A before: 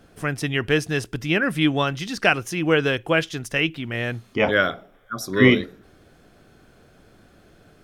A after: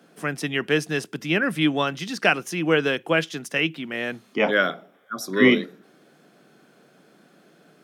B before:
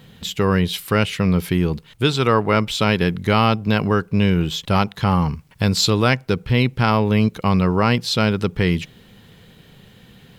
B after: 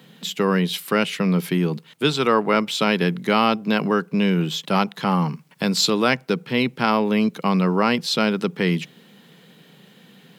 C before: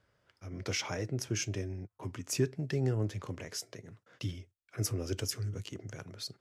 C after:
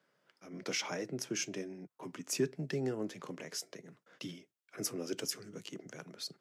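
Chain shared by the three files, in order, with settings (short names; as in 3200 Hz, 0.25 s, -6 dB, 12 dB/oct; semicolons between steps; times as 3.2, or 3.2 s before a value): steep high-pass 150 Hz 48 dB/oct; gain -1 dB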